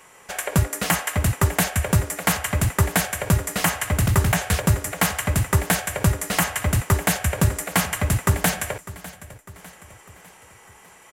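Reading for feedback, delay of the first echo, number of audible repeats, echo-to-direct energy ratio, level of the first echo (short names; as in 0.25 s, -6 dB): 50%, 0.601 s, 3, -16.5 dB, -17.5 dB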